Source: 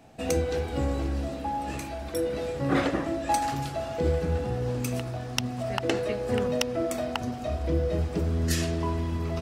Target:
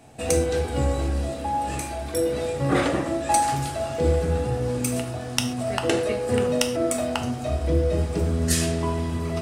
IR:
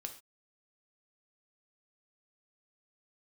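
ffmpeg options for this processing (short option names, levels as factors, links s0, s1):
-filter_complex "[0:a]equalizer=f=8900:w=1.9:g=10[s0];[1:a]atrim=start_sample=2205[s1];[s0][s1]afir=irnorm=-1:irlink=0,volume=2.11"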